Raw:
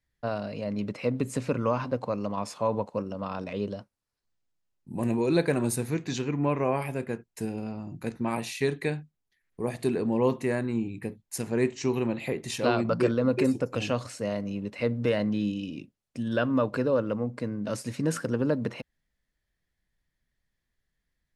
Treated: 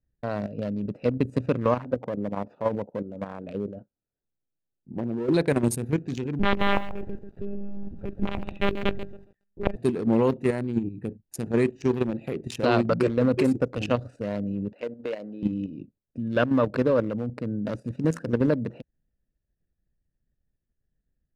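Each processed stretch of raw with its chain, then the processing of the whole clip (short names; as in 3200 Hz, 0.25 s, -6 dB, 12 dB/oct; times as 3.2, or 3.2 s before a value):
1.75–5.34 treble ducked by the level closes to 810 Hz, closed at -26 dBFS + low shelf 140 Hz -8 dB
6.39–9.76 wrapped overs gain 17.5 dB + monotone LPC vocoder at 8 kHz 200 Hz + lo-fi delay 0.139 s, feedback 35%, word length 8-bit, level -8 dB
14.73–15.43 HPF 450 Hz + compressor 2:1, threshold -31 dBFS + air absorption 110 m
whole clip: Wiener smoothing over 41 samples; level quantiser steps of 9 dB; gain +7 dB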